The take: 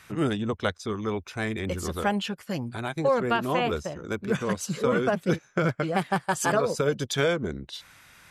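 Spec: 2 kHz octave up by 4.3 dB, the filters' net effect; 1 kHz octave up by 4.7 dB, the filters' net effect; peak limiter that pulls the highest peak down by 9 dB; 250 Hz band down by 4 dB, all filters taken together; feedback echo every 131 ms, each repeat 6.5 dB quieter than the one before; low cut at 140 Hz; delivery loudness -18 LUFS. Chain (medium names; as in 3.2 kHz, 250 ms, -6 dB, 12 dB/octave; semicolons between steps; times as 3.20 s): high-pass 140 Hz; peaking EQ 250 Hz -5 dB; peaking EQ 1 kHz +5.5 dB; peaking EQ 2 kHz +3.5 dB; peak limiter -16.5 dBFS; feedback delay 131 ms, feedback 47%, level -6.5 dB; trim +10.5 dB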